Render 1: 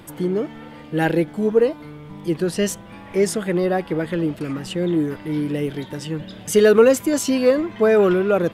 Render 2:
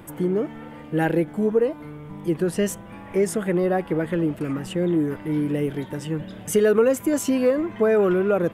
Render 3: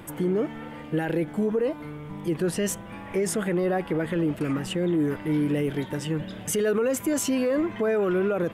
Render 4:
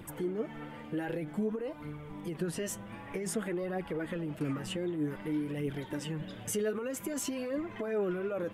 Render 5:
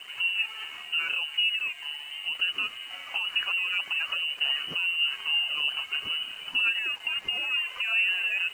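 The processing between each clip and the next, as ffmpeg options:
-af "equalizer=f=4.4k:w=1.2:g=-10,acompressor=threshold=-18dB:ratio=2"
-af "equalizer=f=3.6k:w=0.45:g=3.5,alimiter=limit=-17.5dB:level=0:latency=1:release=27"
-af "acompressor=threshold=-25dB:ratio=6,flanger=delay=0.2:depth=9.8:regen=36:speed=0.53:shape=triangular,volume=-2dB"
-af "lowpass=f=2.6k:t=q:w=0.5098,lowpass=f=2.6k:t=q:w=0.6013,lowpass=f=2.6k:t=q:w=0.9,lowpass=f=2.6k:t=q:w=2.563,afreqshift=-3100,aeval=exprs='sgn(val(0))*max(abs(val(0))-0.00119,0)':c=same,volume=6.5dB"

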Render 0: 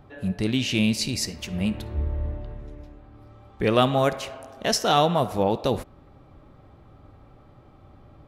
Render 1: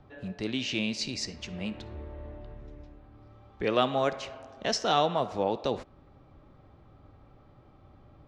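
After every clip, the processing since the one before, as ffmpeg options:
-filter_complex "[0:a]acrossover=split=240|3400[a][b][c];[a]acompressor=threshold=-36dB:ratio=6[d];[d][b][c]amix=inputs=3:normalize=0,lowpass=f=6.6k:w=0.5412,lowpass=f=6.6k:w=1.3066,volume=-5dB"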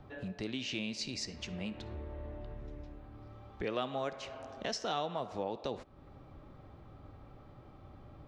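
-af "acompressor=threshold=-44dB:ratio=2,volume=2dB"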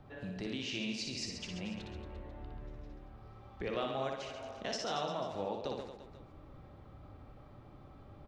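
-af "aecho=1:1:60|135|228.8|345.9|492.4:0.631|0.398|0.251|0.158|0.1,volume=-2.5dB"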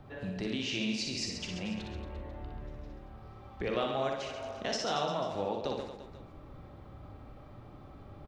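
-filter_complex "[0:a]asplit=2[a][b];[b]adelay=42,volume=-11.5dB[c];[a][c]amix=inputs=2:normalize=0,volume=4dB"

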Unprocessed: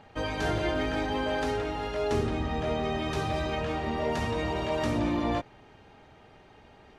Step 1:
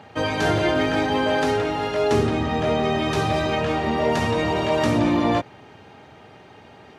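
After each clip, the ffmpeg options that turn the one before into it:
-af "highpass=f=85:w=0.5412,highpass=f=85:w=1.3066,volume=8.5dB"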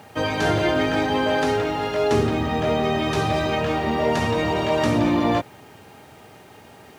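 -af "acrusher=bits=8:mix=0:aa=0.000001"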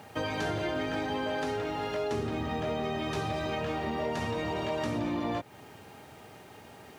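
-af "acompressor=threshold=-27dB:ratio=3,volume=-4dB"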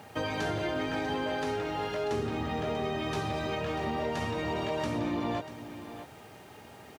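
-af "aecho=1:1:641:0.237"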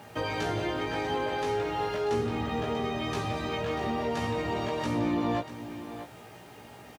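-filter_complex "[0:a]asplit=2[a][b];[b]adelay=17,volume=-4dB[c];[a][c]amix=inputs=2:normalize=0"

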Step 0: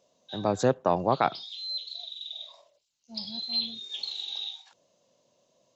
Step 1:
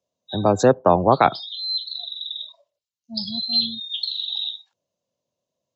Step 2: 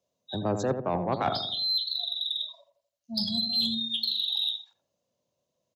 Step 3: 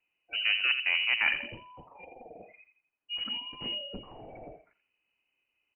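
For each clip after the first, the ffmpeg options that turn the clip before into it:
-filter_complex "[0:a]afftdn=nr=23:nf=-41,equalizer=f=73:w=0.73:g=10.5,acrossover=split=220|540|1200[a][b][c][d];[a]alimiter=level_in=7dB:limit=-24dB:level=0:latency=1:release=382,volume=-7dB[e];[e][b][c][d]amix=inputs=4:normalize=0,volume=8.5dB"
-filter_complex "[0:a]areverse,acompressor=threshold=-24dB:ratio=8,areverse,asoftclip=type=tanh:threshold=-18dB,asplit=2[a][b];[b]adelay=84,lowpass=f=870:p=1,volume=-6dB,asplit=2[c][d];[d]adelay=84,lowpass=f=870:p=1,volume=0.52,asplit=2[e][f];[f]adelay=84,lowpass=f=870:p=1,volume=0.52,asplit=2[g][h];[h]adelay=84,lowpass=f=870:p=1,volume=0.52,asplit=2[i][j];[j]adelay=84,lowpass=f=870:p=1,volume=0.52,asplit=2[k][l];[l]adelay=84,lowpass=f=870:p=1,volume=0.52[m];[a][c][e][g][i][k][m]amix=inputs=7:normalize=0,volume=1dB"
-af "crystalizer=i=6:c=0,asoftclip=type=tanh:threshold=-16dB,lowpass=f=2.6k:t=q:w=0.5098,lowpass=f=2.6k:t=q:w=0.6013,lowpass=f=2.6k:t=q:w=0.9,lowpass=f=2.6k:t=q:w=2.563,afreqshift=-3100"

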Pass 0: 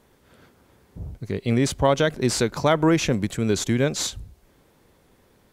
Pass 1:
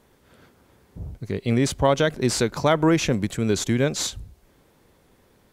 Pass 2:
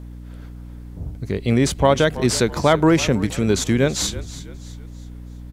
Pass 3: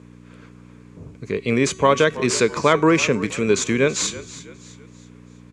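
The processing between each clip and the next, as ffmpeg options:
-af anull
-filter_complex "[0:a]aeval=exprs='val(0)+0.0126*(sin(2*PI*60*n/s)+sin(2*PI*2*60*n/s)/2+sin(2*PI*3*60*n/s)/3+sin(2*PI*4*60*n/s)/4+sin(2*PI*5*60*n/s)/5)':c=same,asplit=5[a][b][c][d][e];[b]adelay=327,afreqshift=-39,volume=-16dB[f];[c]adelay=654,afreqshift=-78,volume=-23.7dB[g];[d]adelay=981,afreqshift=-117,volume=-31.5dB[h];[e]adelay=1308,afreqshift=-156,volume=-39.2dB[i];[a][f][g][h][i]amix=inputs=5:normalize=0,volume=3.5dB"
-af "highpass=140,equalizer=f=440:t=q:w=4:g=7,equalizer=f=760:t=q:w=4:g=-7,equalizer=f=1.1k:t=q:w=4:g=9,equalizer=f=1.6k:t=q:w=4:g=3,equalizer=f=2.4k:t=q:w=4:g=10,equalizer=f=6.9k:t=q:w=4:g=6,lowpass=f=9.1k:w=0.5412,lowpass=f=9.1k:w=1.3066,bandreject=f=377.8:t=h:w=4,bandreject=f=755.6:t=h:w=4,bandreject=f=1.1334k:t=h:w=4,bandreject=f=1.5112k:t=h:w=4,bandreject=f=1.889k:t=h:w=4,bandreject=f=2.2668k:t=h:w=4,bandreject=f=2.6446k:t=h:w=4,bandreject=f=3.0224k:t=h:w=4,bandreject=f=3.4002k:t=h:w=4,bandreject=f=3.778k:t=h:w=4,bandreject=f=4.1558k:t=h:w=4,bandreject=f=4.5336k:t=h:w=4,bandreject=f=4.9114k:t=h:w=4,bandreject=f=5.2892k:t=h:w=4,bandreject=f=5.667k:t=h:w=4,bandreject=f=6.0448k:t=h:w=4,bandreject=f=6.4226k:t=h:w=4,bandreject=f=6.8004k:t=h:w=4,bandreject=f=7.1782k:t=h:w=4,bandreject=f=7.556k:t=h:w=4,bandreject=f=7.9338k:t=h:w=4,bandreject=f=8.3116k:t=h:w=4,bandreject=f=8.6894k:t=h:w=4,bandreject=f=9.0672k:t=h:w=4,bandreject=f=9.445k:t=h:w=4,bandreject=f=9.8228k:t=h:w=4,bandreject=f=10.2006k:t=h:w=4,bandreject=f=10.5784k:t=h:w=4,bandreject=f=10.9562k:t=h:w=4,bandreject=f=11.334k:t=h:w=4,bandreject=f=11.7118k:t=h:w=4,bandreject=f=12.0896k:t=h:w=4,bandreject=f=12.4674k:t=h:w=4,bandreject=f=12.8452k:t=h:w=4,bandreject=f=13.223k:t=h:w=4,volume=-2.5dB"

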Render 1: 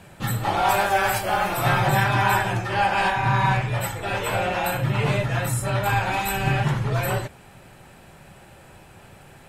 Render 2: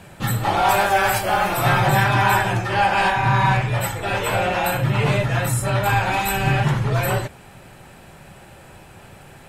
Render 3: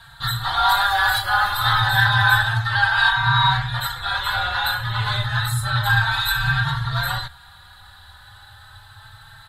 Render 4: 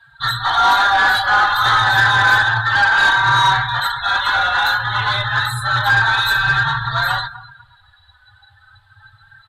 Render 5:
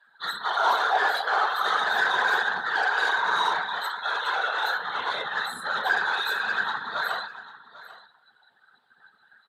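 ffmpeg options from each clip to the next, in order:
-af "acontrast=68,volume=-3dB"
-filter_complex "[0:a]firequalizer=gain_entry='entry(110,0);entry(180,-23);entry(330,-24);entry(520,-22);entry(850,-2);entry(1600,6);entry(2400,-15);entry(3800,14);entry(5500,-10);entry(11000,-3)':delay=0.05:min_phase=1,asplit=2[a][b];[b]adelay=3.9,afreqshift=0.3[c];[a][c]amix=inputs=2:normalize=1,volume=3.5dB"
-filter_complex "[0:a]asplit=2[a][b];[b]adelay=247,lowpass=f=4.4k:p=1,volume=-15.5dB,asplit=2[c][d];[d]adelay=247,lowpass=f=4.4k:p=1,volume=0.41,asplit=2[e][f];[f]adelay=247,lowpass=f=4.4k:p=1,volume=0.41,asplit=2[g][h];[h]adelay=247,lowpass=f=4.4k:p=1,volume=0.41[i];[a][c][e][g][i]amix=inputs=5:normalize=0,afftdn=nr=19:nf=-34,asplit=2[j][k];[k]highpass=f=720:p=1,volume=16dB,asoftclip=type=tanh:threshold=-4dB[l];[j][l]amix=inputs=2:normalize=0,lowpass=f=2.4k:p=1,volume=-6dB"
-af "afftfilt=real='hypot(re,im)*cos(2*PI*random(0))':imag='hypot(re,im)*sin(2*PI*random(1))':win_size=512:overlap=0.75,highpass=f=430:t=q:w=4.9,aecho=1:1:795:0.133,volume=-5.5dB"

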